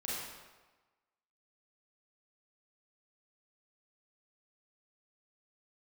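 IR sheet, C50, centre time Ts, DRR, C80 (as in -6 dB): -2.5 dB, 0.101 s, -7.5 dB, 0.5 dB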